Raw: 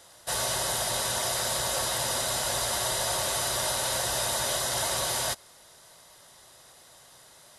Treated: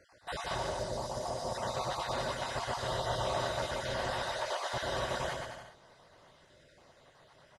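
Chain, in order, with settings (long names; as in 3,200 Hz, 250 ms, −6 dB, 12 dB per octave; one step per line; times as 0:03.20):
time-frequency cells dropped at random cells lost 36%
0:00.58–0:01.55: flat-topped bell 2,200 Hz −14 dB
0:04.10–0:04.62: high-pass filter 800 Hz → 310 Hz 24 dB per octave
head-to-tape spacing loss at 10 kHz 26 dB
bouncing-ball delay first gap 120 ms, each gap 0.8×, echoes 5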